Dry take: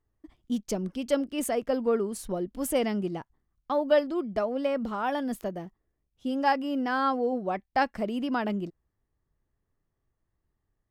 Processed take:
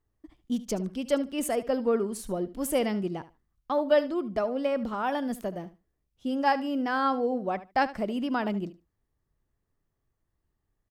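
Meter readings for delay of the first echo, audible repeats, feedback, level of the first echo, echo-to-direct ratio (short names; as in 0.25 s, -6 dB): 74 ms, 2, 16%, -16.0 dB, -16.0 dB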